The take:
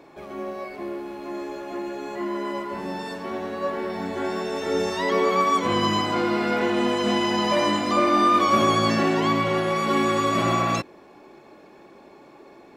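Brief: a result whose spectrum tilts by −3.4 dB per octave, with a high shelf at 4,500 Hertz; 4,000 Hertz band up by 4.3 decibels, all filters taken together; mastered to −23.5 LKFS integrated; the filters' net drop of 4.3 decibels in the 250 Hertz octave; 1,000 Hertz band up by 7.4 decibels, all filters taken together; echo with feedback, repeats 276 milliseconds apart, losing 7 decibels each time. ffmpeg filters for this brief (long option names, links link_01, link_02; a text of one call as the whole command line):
ffmpeg -i in.wav -af "equalizer=frequency=250:width_type=o:gain=-7,equalizer=frequency=1000:width_type=o:gain=8.5,equalizer=frequency=4000:width_type=o:gain=3.5,highshelf=frequency=4500:gain=3.5,aecho=1:1:276|552|828|1104|1380:0.447|0.201|0.0905|0.0407|0.0183,volume=-6.5dB" out.wav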